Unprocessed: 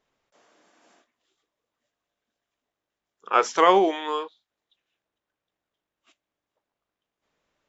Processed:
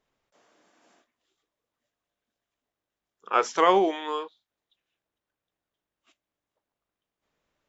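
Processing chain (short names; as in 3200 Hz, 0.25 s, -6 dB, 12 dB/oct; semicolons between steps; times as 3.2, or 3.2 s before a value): low shelf 170 Hz +4.5 dB; gain -3 dB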